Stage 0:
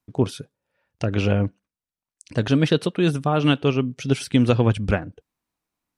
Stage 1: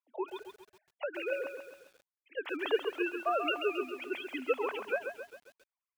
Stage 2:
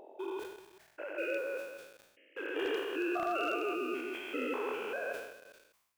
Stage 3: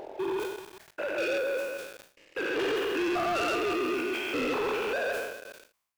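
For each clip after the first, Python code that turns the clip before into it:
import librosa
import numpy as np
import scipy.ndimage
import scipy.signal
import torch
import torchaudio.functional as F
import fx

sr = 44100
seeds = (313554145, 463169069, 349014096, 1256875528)

y1 = fx.sine_speech(x, sr)
y1 = scipy.signal.sosfilt(scipy.signal.butter(4, 480.0, 'highpass', fs=sr, output='sos'), y1)
y1 = fx.echo_crushed(y1, sr, ms=135, feedback_pct=55, bits=8, wet_db=-7.0)
y1 = F.gain(torch.from_numpy(y1), -7.5).numpy()
y2 = fx.spec_steps(y1, sr, hold_ms=200)
y2 = 10.0 ** (-29.5 / 20.0) * (np.abs((y2 / 10.0 ** (-29.5 / 20.0) + 3.0) % 4.0 - 2.0) - 1.0)
y2 = fx.sustainer(y2, sr, db_per_s=64.0)
y2 = F.gain(torch.from_numpy(y2), 4.0).numpy()
y3 = fx.leveller(y2, sr, passes=3)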